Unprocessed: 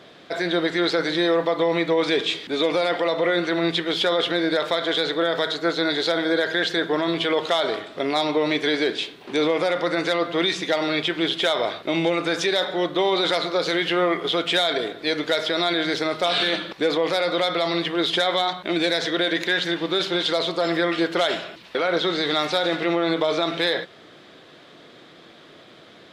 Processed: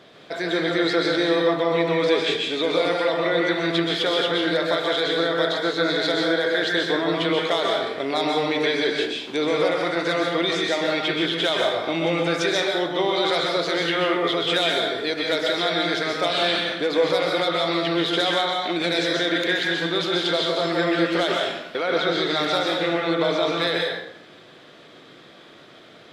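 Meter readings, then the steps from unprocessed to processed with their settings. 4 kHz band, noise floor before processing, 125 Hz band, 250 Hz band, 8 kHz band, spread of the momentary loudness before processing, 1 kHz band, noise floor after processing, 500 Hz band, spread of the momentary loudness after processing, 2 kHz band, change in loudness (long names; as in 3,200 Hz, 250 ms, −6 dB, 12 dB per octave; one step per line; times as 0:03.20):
0.0 dB, −48 dBFS, +2.0 dB, 0.0 dB, +0.5 dB, 3 LU, +0.5 dB, −47 dBFS, +0.5 dB, 3 LU, +1.0 dB, +0.5 dB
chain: dense smooth reverb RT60 0.65 s, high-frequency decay 0.8×, pre-delay 115 ms, DRR −0.5 dB
level −2.5 dB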